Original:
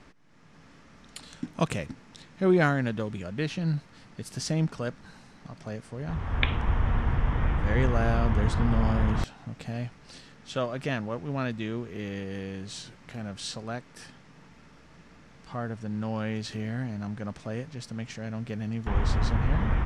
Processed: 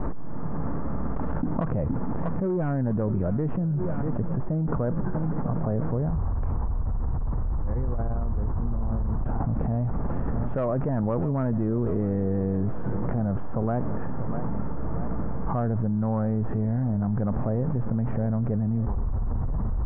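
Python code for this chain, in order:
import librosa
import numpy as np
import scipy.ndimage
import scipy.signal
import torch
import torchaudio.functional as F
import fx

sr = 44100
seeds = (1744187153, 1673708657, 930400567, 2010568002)

y = fx.tracing_dist(x, sr, depth_ms=0.38)
y = scipy.signal.sosfilt(scipy.signal.cheby2(4, 70, 4800.0, 'lowpass', fs=sr, output='sos'), y)
y = fx.low_shelf(y, sr, hz=66.0, db=10.5)
y = fx.rider(y, sr, range_db=5, speed_s=0.5)
y = 10.0 ** (-16.0 / 20.0) * np.tanh(y / 10.0 ** (-16.0 / 20.0))
y = fx.echo_feedback(y, sr, ms=644, feedback_pct=60, wet_db=-20.5)
y = fx.env_flatten(y, sr, amount_pct=100)
y = F.gain(torch.from_numpy(y), -6.0).numpy()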